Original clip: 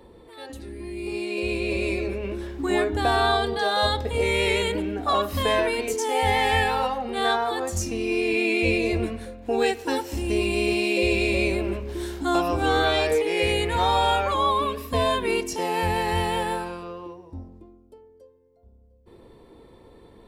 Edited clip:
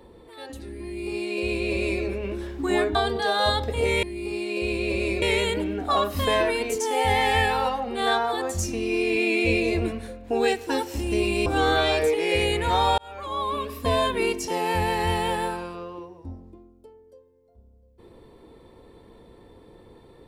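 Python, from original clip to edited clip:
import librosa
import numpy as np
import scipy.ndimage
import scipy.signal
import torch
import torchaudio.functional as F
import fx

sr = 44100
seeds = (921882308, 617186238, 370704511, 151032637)

y = fx.edit(x, sr, fx.duplicate(start_s=0.84, length_s=1.19, to_s=4.4),
    fx.cut(start_s=2.95, length_s=0.37),
    fx.cut(start_s=10.64, length_s=1.9),
    fx.fade_in_span(start_s=14.06, length_s=0.86), tone=tone)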